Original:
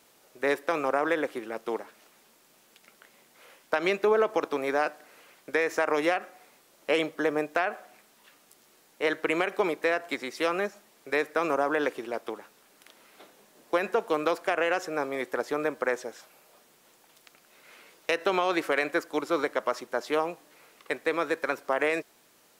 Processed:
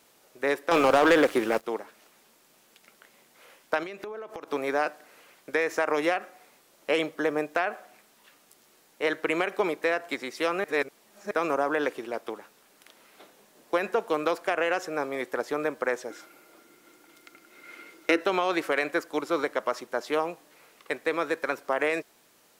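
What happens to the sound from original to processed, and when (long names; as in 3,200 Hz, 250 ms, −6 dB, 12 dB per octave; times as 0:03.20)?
0:00.71–0:01.64: leveller curve on the samples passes 3
0:03.83–0:04.48: downward compressor 20 to 1, threshold −34 dBFS
0:10.64–0:11.31: reverse
0:16.10–0:18.21: hollow resonant body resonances 320/1,400/2,100 Hz, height 15 dB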